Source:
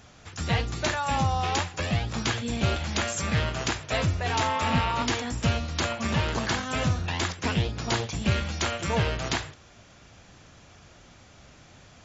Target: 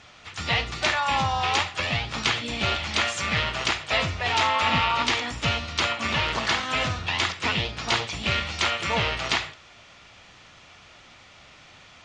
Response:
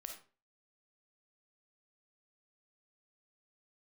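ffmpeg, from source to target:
-filter_complex "[0:a]lowpass=3500,tiltshelf=f=820:g=-8,bandreject=f=1600:w=7.7,asplit=2[s0][s1];[s1]asetrate=55563,aresample=44100,atempo=0.793701,volume=0.282[s2];[s0][s2]amix=inputs=2:normalize=0,asplit=2[s3][s4];[1:a]atrim=start_sample=2205[s5];[s4][s5]afir=irnorm=-1:irlink=0,volume=0.596[s6];[s3][s6]amix=inputs=2:normalize=0"

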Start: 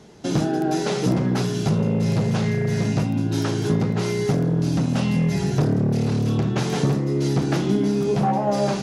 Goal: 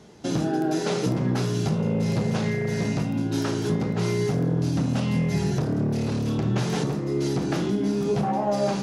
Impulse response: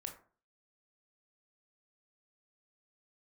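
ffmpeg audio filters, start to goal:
-filter_complex "[0:a]asplit=2[s0][s1];[1:a]atrim=start_sample=2205,asetrate=43218,aresample=44100[s2];[s1][s2]afir=irnorm=-1:irlink=0,volume=1.68[s3];[s0][s3]amix=inputs=2:normalize=0,alimiter=limit=0.473:level=0:latency=1:release=192,volume=0.398"

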